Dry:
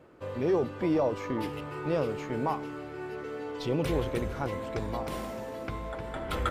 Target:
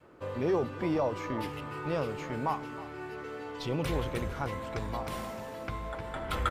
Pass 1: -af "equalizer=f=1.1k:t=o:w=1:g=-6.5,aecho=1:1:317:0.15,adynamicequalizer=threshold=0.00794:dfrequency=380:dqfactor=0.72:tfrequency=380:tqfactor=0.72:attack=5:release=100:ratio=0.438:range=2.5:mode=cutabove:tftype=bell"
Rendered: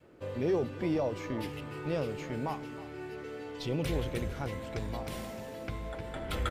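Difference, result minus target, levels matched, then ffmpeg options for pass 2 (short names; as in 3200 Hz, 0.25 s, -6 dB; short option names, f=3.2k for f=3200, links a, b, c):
1000 Hz band -5.0 dB
-af "equalizer=f=1.1k:t=o:w=1:g=2,aecho=1:1:317:0.15,adynamicequalizer=threshold=0.00794:dfrequency=380:dqfactor=0.72:tfrequency=380:tqfactor=0.72:attack=5:release=100:ratio=0.438:range=2.5:mode=cutabove:tftype=bell"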